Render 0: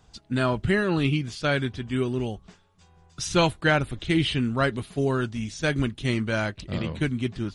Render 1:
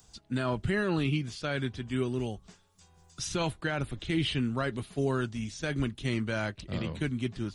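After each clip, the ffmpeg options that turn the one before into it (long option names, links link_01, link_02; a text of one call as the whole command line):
ffmpeg -i in.wav -filter_complex "[0:a]acrossover=split=160|5200[link_01][link_02][link_03];[link_03]acompressor=mode=upward:threshold=-48dB:ratio=2.5[link_04];[link_01][link_02][link_04]amix=inputs=3:normalize=0,alimiter=limit=-14.5dB:level=0:latency=1:release=25,volume=-4.5dB" out.wav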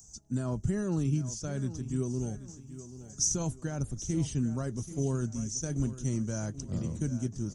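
ffmpeg -i in.wav -af "firequalizer=gain_entry='entry(170,0);entry(370,-6);entry(2200,-21);entry(4100,-18);entry(6000,12);entry(9400,-2)':delay=0.05:min_phase=1,aecho=1:1:783|1566|2349|3132:0.2|0.0778|0.0303|0.0118,volume=1.5dB" out.wav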